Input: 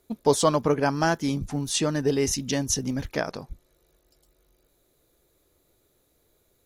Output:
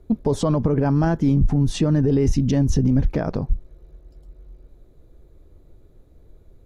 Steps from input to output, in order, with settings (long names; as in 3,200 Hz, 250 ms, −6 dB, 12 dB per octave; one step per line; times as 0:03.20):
spectral tilt −4.5 dB per octave
brickwall limiter −15 dBFS, peak gain reduction 13 dB
level +4.5 dB